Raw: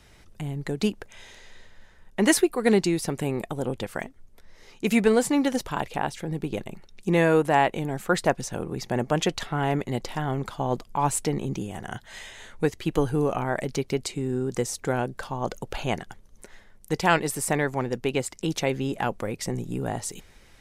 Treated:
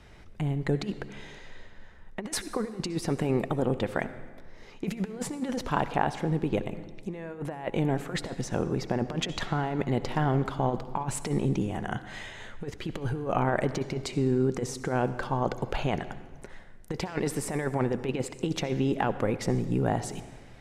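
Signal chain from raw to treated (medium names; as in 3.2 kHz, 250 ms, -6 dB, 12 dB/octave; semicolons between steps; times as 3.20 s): low-pass 2.3 kHz 6 dB/octave; compressor with a negative ratio -27 dBFS, ratio -0.5; reverberation RT60 1.5 s, pre-delay 58 ms, DRR 13 dB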